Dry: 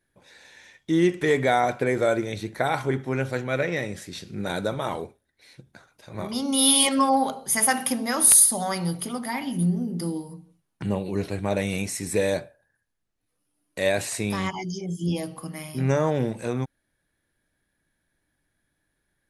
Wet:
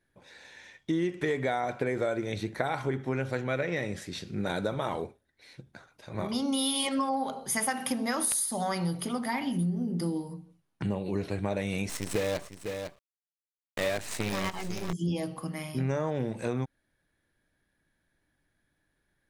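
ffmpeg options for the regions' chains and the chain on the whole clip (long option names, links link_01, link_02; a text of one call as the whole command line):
ffmpeg -i in.wav -filter_complex "[0:a]asettb=1/sr,asplit=3[link_01][link_02][link_03];[link_01]atrim=end=11.894[link_04];[link_02]atrim=start=11.89:end=14.93,asetpts=PTS-STARTPTS,afade=type=in:duration=0.004:curve=qsin,afade=type=out:start_time=3.036:duration=0.004:curve=qsin,acrusher=bits=5:dc=4:mix=0:aa=0.000001,aecho=1:1:502:0.224,atrim=end_sample=134064[link_05];[link_03]atrim=start=14.926[link_06];[link_04][link_05]acrossfade=duration=0.004:curve1=hsin:curve2=qsin[link_07];[link_07][link_06]acrossfade=duration=0.004:curve1=qsin:curve2=hsin,highshelf=frequency=8300:gain=-9.5,acompressor=threshold=-26dB:ratio=6" out.wav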